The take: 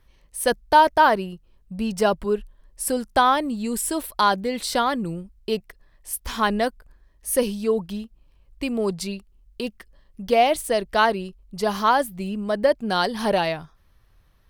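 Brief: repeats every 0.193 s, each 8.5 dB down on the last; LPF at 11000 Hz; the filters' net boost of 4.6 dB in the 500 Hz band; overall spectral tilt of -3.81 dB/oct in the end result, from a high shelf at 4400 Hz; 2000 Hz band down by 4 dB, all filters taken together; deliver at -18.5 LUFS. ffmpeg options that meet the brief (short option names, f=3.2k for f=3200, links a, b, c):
-af "lowpass=11k,equalizer=f=500:t=o:g=6,equalizer=f=2k:t=o:g=-5.5,highshelf=f=4.4k:g=-5.5,aecho=1:1:193|386|579|772:0.376|0.143|0.0543|0.0206,volume=2dB"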